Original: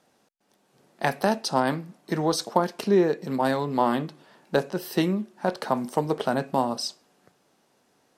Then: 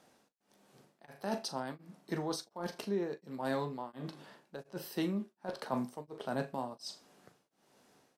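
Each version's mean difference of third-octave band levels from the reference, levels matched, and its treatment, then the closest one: 5.5 dB: reverse; compressor 6:1, threshold -32 dBFS, peak gain reduction 16.5 dB; reverse; doubler 15 ms -14 dB; flutter echo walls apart 6.9 m, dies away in 0.21 s; beating tremolo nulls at 1.4 Hz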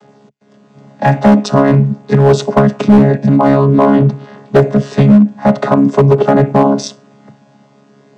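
8.0 dB: chord vocoder bare fifth, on C#3; dynamic EQ 4600 Hz, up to -5 dB, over -58 dBFS, Q 1.5; hard clip -19.5 dBFS, distortion -14 dB; maximiser +24 dB; gain -1 dB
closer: first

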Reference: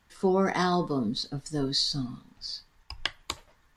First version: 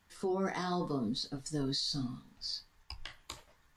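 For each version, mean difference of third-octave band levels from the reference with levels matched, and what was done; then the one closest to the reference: 3.5 dB: high shelf 5100 Hz +4 dB; limiter -22.5 dBFS, peak gain reduction 14 dB; flange 0.76 Hz, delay 9.8 ms, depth 8.2 ms, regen -38%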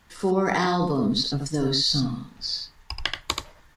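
5.0 dB: dynamic EQ 8500 Hz, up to -5 dB, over -55 dBFS, Q 2.9; in parallel at -1 dB: negative-ratio compressor -30 dBFS, ratio -0.5; on the sum: echo 80 ms -5 dB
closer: first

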